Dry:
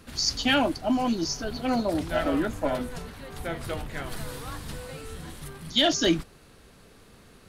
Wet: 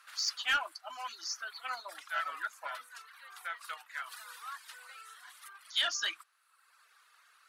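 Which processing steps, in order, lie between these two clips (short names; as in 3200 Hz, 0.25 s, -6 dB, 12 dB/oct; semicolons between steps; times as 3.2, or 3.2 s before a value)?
reverb removal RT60 1 s; ladder high-pass 1100 Hz, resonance 50%; added harmonics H 5 -21 dB, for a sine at -18.5 dBFS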